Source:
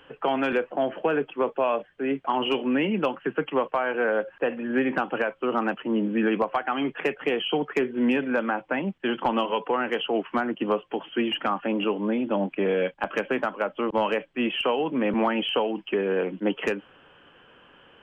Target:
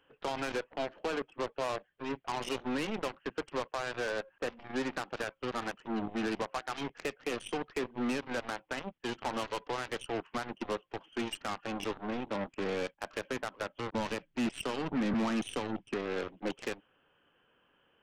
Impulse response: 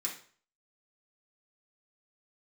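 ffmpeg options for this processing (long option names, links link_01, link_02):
-filter_complex "[0:a]asplit=3[link_01][link_02][link_03];[link_01]afade=type=out:start_time=13.93:duration=0.02[link_04];[link_02]asubboost=boost=5:cutoff=220,afade=type=in:start_time=13.93:duration=0.02,afade=type=out:start_time=15.94:duration=0.02[link_05];[link_03]afade=type=in:start_time=15.94:duration=0.02[link_06];[link_04][link_05][link_06]amix=inputs=3:normalize=0,aeval=exprs='0.299*(cos(1*acos(clip(val(0)/0.299,-1,1)))-cos(1*PI/2))+0.0168*(cos(3*acos(clip(val(0)/0.299,-1,1)))-cos(3*PI/2))+0.0168*(cos(6*acos(clip(val(0)/0.299,-1,1)))-cos(6*PI/2))+0.0422*(cos(7*acos(clip(val(0)/0.299,-1,1)))-cos(7*PI/2))+0.00668*(cos(8*acos(clip(val(0)/0.299,-1,1)))-cos(8*PI/2))':channel_layout=same,asoftclip=type=tanh:threshold=-27dB"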